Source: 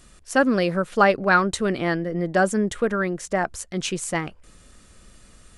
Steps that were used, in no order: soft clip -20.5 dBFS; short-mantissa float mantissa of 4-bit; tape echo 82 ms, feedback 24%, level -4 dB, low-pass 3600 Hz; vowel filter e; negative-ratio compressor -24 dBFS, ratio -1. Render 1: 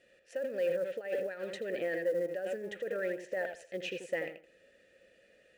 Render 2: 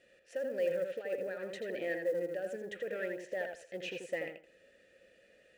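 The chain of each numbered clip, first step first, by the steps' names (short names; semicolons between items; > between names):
tape echo > negative-ratio compressor > vowel filter > soft clip > short-mantissa float; negative-ratio compressor > soft clip > vowel filter > tape echo > short-mantissa float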